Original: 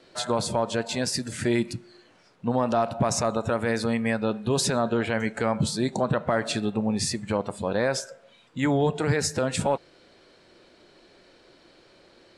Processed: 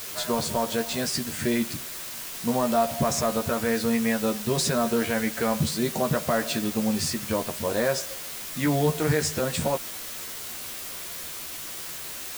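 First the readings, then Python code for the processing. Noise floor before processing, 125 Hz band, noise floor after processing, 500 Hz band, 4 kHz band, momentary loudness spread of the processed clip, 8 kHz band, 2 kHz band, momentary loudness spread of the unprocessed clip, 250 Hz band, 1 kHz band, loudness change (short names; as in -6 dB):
-57 dBFS, -1.0 dB, -37 dBFS, -0.5 dB, +1.5 dB, 10 LU, +3.0 dB, +0.5 dB, 5 LU, +0.5 dB, -0.5 dB, -0.5 dB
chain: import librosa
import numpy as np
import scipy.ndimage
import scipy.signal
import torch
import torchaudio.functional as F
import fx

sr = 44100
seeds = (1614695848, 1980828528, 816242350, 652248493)

y = fx.quant_dither(x, sr, seeds[0], bits=6, dither='triangular')
y = fx.notch(y, sr, hz=840.0, q=14.0)
y = fx.doubler(y, sr, ms=13.0, db=-5)
y = F.gain(torch.from_numpy(y), -1.5).numpy()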